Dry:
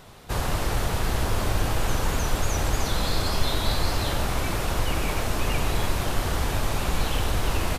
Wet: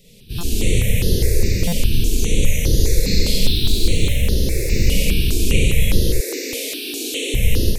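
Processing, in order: 3.40–4.81 s: self-modulated delay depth 0.067 ms; elliptic band-stop 480–2200 Hz, stop band 60 dB; Schroeder reverb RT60 0.68 s, combs from 32 ms, DRR -3 dB; level rider; 6.20–7.34 s: steep high-pass 260 Hz 96 dB/octave; buffer glitch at 0.38/1.67 s, samples 256, times 8; stepped phaser 4.9 Hz 340–7800 Hz

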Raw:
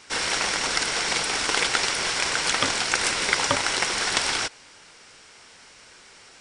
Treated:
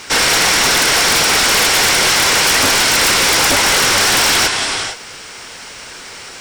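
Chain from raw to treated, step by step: gated-style reverb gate 490 ms rising, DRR 9 dB; sine folder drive 18 dB, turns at -3.5 dBFS; bit crusher 7-bit; trim -5.5 dB

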